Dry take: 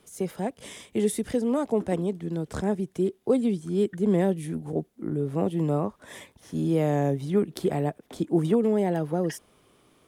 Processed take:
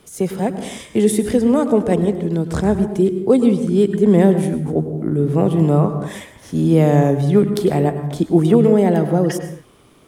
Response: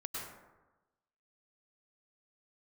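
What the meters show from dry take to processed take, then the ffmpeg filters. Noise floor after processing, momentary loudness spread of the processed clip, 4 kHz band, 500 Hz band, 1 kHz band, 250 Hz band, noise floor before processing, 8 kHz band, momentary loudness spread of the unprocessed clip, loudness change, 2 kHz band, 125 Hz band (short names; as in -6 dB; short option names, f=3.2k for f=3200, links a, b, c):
-48 dBFS, 10 LU, +9.0 dB, +10.0 dB, +9.5 dB, +11.0 dB, -62 dBFS, +9.0 dB, 10 LU, +10.5 dB, +9.0 dB, +12.0 dB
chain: -filter_complex "[0:a]asplit=2[a][b];[1:a]atrim=start_sample=2205,afade=t=out:st=0.37:d=0.01,atrim=end_sample=16758,lowshelf=f=240:g=9.5[c];[b][c]afir=irnorm=-1:irlink=0,volume=-6.5dB[d];[a][d]amix=inputs=2:normalize=0,volume=6.5dB"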